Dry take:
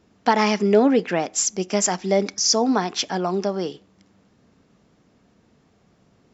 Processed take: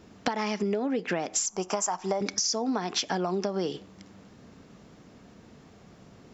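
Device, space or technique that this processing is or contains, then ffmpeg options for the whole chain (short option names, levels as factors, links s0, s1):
serial compression, peaks first: -filter_complex "[0:a]asettb=1/sr,asplit=3[s0][s1][s2];[s0]atrim=end=1.464[s3];[s1]atrim=start=1.46:end=2.21,asetpts=PTS-STARTPTS,afade=t=in:d=0.004:c=qsin,afade=t=out:st=0.746:d=0.004:c=qsin,equalizer=f=125:t=o:w=1:g=-10,equalizer=f=250:t=o:w=1:g=-12,equalizer=f=500:t=o:w=1:g=-6,equalizer=f=1000:t=o:w=1:g=10,equalizer=f=2000:t=o:w=1:g=-9,equalizer=f=4000:t=o:w=1:g=-10[s4];[s2]atrim=start=2.206[s5];[s3][s4]acrossfade=d=0.004:c1=hsin:c2=qsin[s6];[s6][s5]acrossfade=d=0.004:c1=qsin:c2=hsin,acompressor=threshold=0.0447:ratio=10,acompressor=threshold=0.0224:ratio=3,volume=2.24"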